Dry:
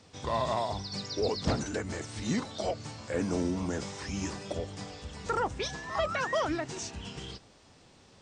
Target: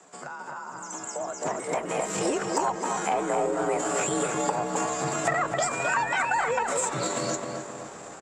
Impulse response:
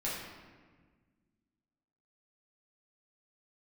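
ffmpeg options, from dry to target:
-filter_complex "[0:a]asetrate=60591,aresample=44100,atempo=0.727827,lowpass=f=7.4k:t=q:w=10,acrossover=split=370 2100:gain=0.251 1 0.178[a][b][c];[a][b][c]amix=inputs=3:normalize=0,acompressor=threshold=-45dB:ratio=6,asplit=2[d][e];[e]adelay=262,lowpass=f=2k:p=1,volume=-3.5dB,asplit=2[f][g];[g]adelay=262,lowpass=f=2k:p=1,volume=0.48,asplit=2[h][i];[i]adelay=262,lowpass=f=2k:p=1,volume=0.48,asplit=2[j][k];[k]adelay=262,lowpass=f=2k:p=1,volume=0.48,asplit=2[l][m];[m]adelay=262,lowpass=f=2k:p=1,volume=0.48,asplit=2[n][o];[o]adelay=262,lowpass=f=2k:p=1,volume=0.48[p];[f][h][j][l][n][p]amix=inputs=6:normalize=0[q];[d][q]amix=inputs=2:normalize=0,dynaudnorm=f=280:g=11:m=12.5dB,aeval=exprs='0.1*(cos(1*acos(clip(val(0)/0.1,-1,1)))-cos(1*PI/2))+0.000891*(cos(4*acos(clip(val(0)/0.1,-1,1)))-cos(4*PI/2))+0.000891*(cos(7*acos(clip(val(0)/0.1,-1,1)))-cos(7*PI/2))':c=same,afreqshift=47,volume=7.5dB"

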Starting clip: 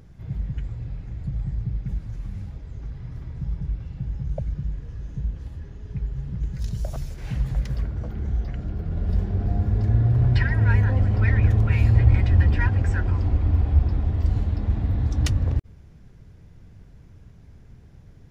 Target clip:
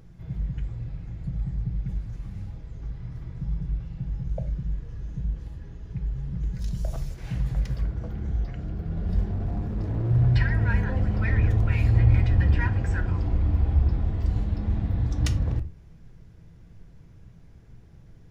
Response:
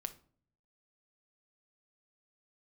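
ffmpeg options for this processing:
-filter_complex "[0:a]asettb=1/sr,asplit=3[a][b][c];[a]atrim=end=9.324[d];[b]atrim=start=9.32:end=10.11,asetpts=PTS-STARTPTS,afade=t=in:d=0.004:c=qsin,afade=t=out:st=0.786:d=0.004:c=qsin,asoftclip=type=hard:threshold=-23dB[e];[c]atrim=start=10.106[f];[d][e]acrossfade=d=0.004:c1=hsin:c2=qsin[g];[g][f]acrossfade=d=0.004:c1=qsin:c2=hsin[h];[1:a]atrim=start_sample=2205,afade=t=out:st=0.16:d=0.01,atrim=end_sample=7497[i];[h][i]afir=irnorm=-1:irlink=0"

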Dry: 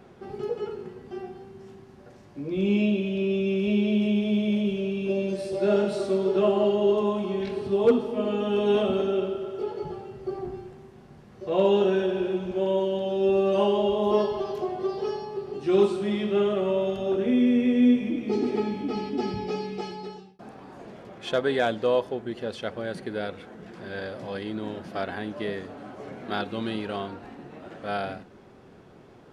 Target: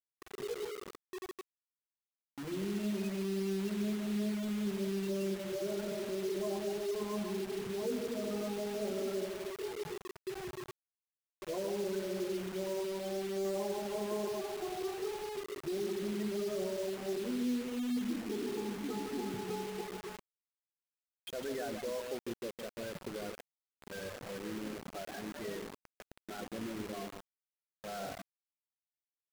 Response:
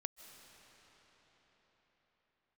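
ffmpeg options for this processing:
-filter_complex "[0:a]asettb=1/sr,asplit=3[a][b][c];[a]atrim=end=16.704[d];[b]atrim=start=16.7:end=19.41,asetpts=PTS-STARTPTS,afade=t=in:d=0.004:c=qsin,afade=t=out:st=2.706:d=0.004:c=qsin,highpass=120,lowpass=2.1k[e];[c]atrim=start=19.406[f];[d][e]acrossfade=d=0.004:c1=hsin:c2=qsin[g];[g][f]acrossfade=d=0.004:c1=qsin:c2=hsin,alimiter=limit=-21.5dB:level=0:latency=1:release=16,aecho=1:1:154:0.501,afftfilt=real='re*gte(hypot(re,im),0.0631)':imag='im*gte(hypot(re,im),0.0631)':win_size=1024:overlap=0.75,acrusher=bits=5:mix=0:aa=0.000001,volume=-9dB"

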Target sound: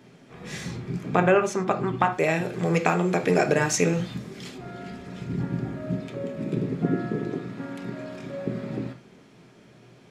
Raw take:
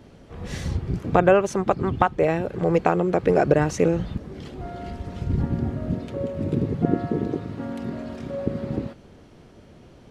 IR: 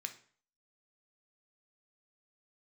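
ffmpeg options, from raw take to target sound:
-filter_complex "[0:a]asettb=1/sr,asplit=3[a][b][c];[a]atrim=end=2.124[d];[b]atrim=start=2.12:end=4.58,asetpts=PTS-STARTPTS,afade=t=in:d=0.004:c=qsin,afade=t=out:st=2.456:d=0.004:c=qsin,highshelf=f=3.1k:g=11[e];[c]atrim=start=4.576[f];[d][e]acrossfade=d=0.004:c1=hsin:c2=qsin[g];[g][f]acrossfade=d=0.004:c1=qsin:c2=hsin[h];[1:a]atrim=start_sample=2205,afade=t=out:st=0.17:d=0.01,atrim=end_sample=7938[i];[h][i]afir=irnorm=-1:irlink=0,volume=2.5dB"

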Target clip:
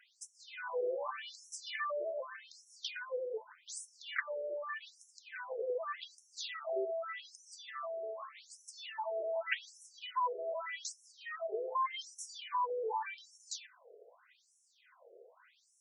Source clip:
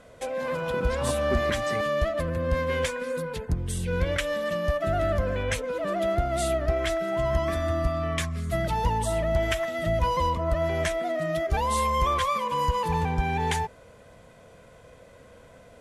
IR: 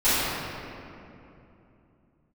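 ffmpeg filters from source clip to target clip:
-af "lowshelf=f=400:t=q:w=3:g=13,afftfilt=real='re*between(b*sr/1024,490*pow(7700/490,0.5+0.5*sin(2*PI*0.84*pts/sr))/1.41,490*pow(7700/490,0.5+0.5*sin(2*PI*0.84*pts/sr))*1.41)':imag='im*between(b*sr/1024,490*pow(7700/490,0.5+0.5*sin(2*PI*0.84*pts/sr))/1.41,490*pow(7700/490,0.5+0.5*sin(2*PI*0.84*pts/sr))*1.41)':win_size=1024:overlap=0.75,volume=-2dB"

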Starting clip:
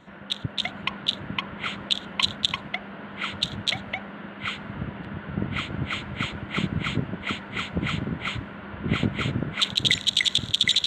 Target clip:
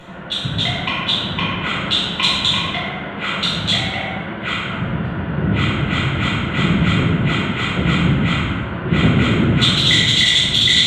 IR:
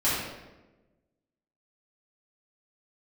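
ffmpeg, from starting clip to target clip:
-filter_complex "[0:a]acompressor=mode=upward:threshold=-39dB:ratio=2.5[a];[1:a]atrim=start_sample=2205,asetrate=26901,aresample=44100[b];[a][b]afir=irnorm=-1:irlink=0,volume=-6dB"

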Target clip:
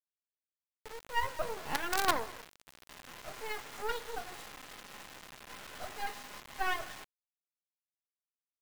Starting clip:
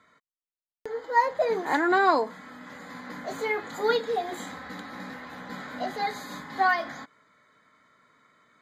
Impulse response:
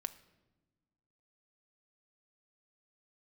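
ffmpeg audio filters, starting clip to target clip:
-filter_complex "[0:a]highpass=610,lowpass=7.9k,highshelf=f=2.5k:g=-5.5,aecho=1:1:205:0.0944[a];[1:a]atrim=start_sample=2205[b];[a][b]afir=irnorm=-1:irlink=0,acrusher=bits=4:dc=4:mix=0:aa=0.000001,volume=-2.5dB"

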